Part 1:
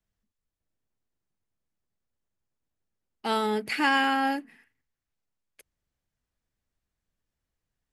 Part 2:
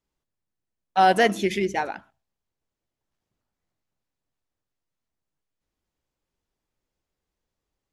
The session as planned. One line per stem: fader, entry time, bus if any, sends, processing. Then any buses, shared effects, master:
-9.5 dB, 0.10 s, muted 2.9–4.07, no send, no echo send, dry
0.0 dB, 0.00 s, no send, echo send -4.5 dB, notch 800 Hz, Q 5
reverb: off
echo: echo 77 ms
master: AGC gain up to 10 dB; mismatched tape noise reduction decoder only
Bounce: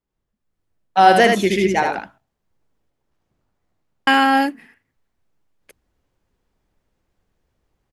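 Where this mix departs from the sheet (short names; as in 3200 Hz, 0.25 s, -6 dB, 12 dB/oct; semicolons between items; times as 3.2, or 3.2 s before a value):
stem 1 -9.5 dB -> +1.0 dB; stem 2: missing notch 800 Hz, Q 5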